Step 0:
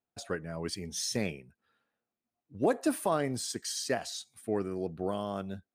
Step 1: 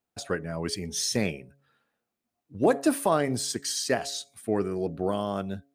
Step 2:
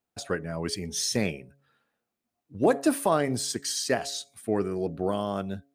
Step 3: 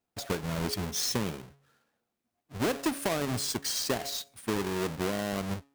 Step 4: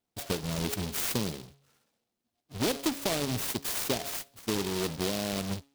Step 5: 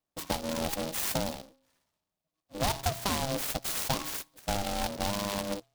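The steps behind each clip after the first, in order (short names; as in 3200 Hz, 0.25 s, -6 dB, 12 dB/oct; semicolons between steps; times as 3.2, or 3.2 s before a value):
de-hum 139.3 Hz, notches 5; gain +5.5 dB
nothing audible
half-waves squared off; compressor 6:1, threshold -23 dBFS, peak gain reduction 8.5 dB; gain -3.5 dB
noise-modulated delay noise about 3600 Hz, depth 0.15 ms
in parallel at -4.5 dB: bit-crush 7-bit; on the sum: ring modulator 400 Hz; gain -1.5 dB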